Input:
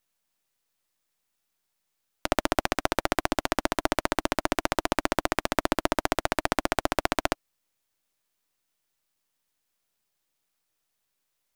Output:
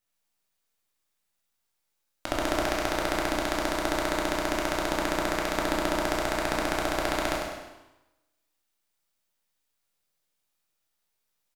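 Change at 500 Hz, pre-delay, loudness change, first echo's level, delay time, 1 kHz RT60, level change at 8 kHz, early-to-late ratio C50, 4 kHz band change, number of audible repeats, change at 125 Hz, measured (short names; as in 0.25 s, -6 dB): +0.5 dB, 6 ms, -0.5 dB, -6.5 dB, 0.1 s, 1.1 s, 0.0 dB, 0.5 dB, 0.0 dB, 1, -0.5 dB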